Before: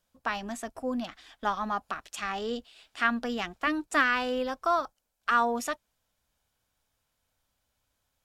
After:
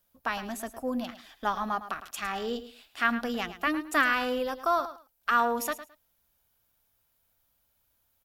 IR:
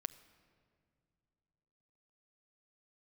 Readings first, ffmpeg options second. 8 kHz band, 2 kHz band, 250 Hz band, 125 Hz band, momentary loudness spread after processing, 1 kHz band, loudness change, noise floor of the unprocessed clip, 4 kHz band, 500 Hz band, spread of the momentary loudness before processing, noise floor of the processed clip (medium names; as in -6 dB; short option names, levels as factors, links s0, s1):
+1.5 dB, 0.0 dB, 0.0 dB, no reading, 12 LU, 0.0 dB, 0.0 dB, -79 dBFS, 0.0 dB, +0.5 dB, 13 LU, -73 dBFS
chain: -af "aexciter=amount=6.2:drive=1.4:freq=11000,aecho=1:1:108|216:0.224|0.0425"